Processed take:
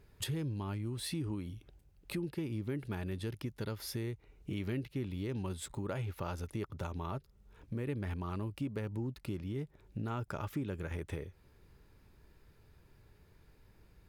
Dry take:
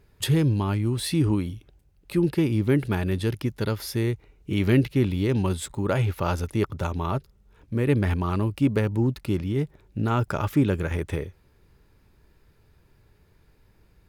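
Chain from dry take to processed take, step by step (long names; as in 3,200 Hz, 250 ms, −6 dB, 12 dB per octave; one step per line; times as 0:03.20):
downward compressor 3 to 1, threshold −36 dBFS, peak gain reduction 15.5 dB
level −3 dB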